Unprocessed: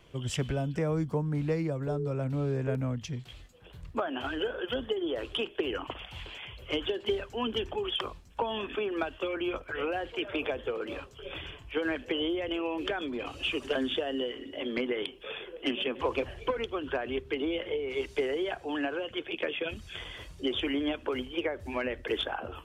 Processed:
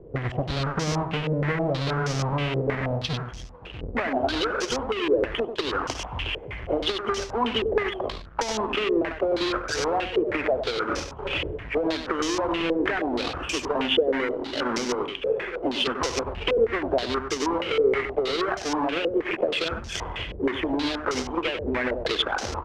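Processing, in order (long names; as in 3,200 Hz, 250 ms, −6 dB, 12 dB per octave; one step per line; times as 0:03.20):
each half-wave held at its own peak
downward compressor, threshold −31 dBFS, peak gain reduction 9.5 dB
single-tap delay 96 ms −8 dB
low-pass on a step sequencer 6.3 Hz 470–5,800 Hz
level +4.5 dB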